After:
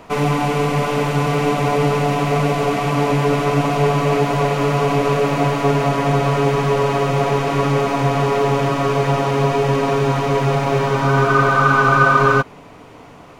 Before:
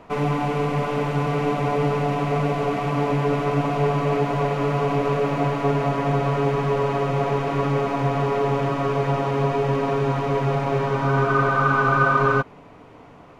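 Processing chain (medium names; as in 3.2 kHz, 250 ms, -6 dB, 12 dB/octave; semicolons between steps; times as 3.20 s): treble shelf 3.9 kHz +11 dB; trim +4.5 dB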